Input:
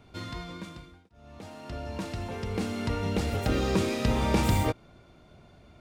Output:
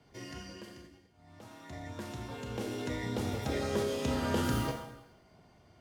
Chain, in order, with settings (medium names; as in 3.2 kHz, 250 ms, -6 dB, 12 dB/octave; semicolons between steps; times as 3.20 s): Schroeder reverb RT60 0.88 s, combs from 27 ms, DRR 4 dB; formant shift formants +5 st; frequency shift +19 Hz; trim -8 dB